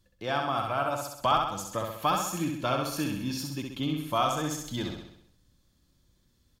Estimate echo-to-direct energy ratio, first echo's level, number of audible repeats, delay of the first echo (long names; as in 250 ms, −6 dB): −2.5 dB, −4.0 dB, 6, 65 ms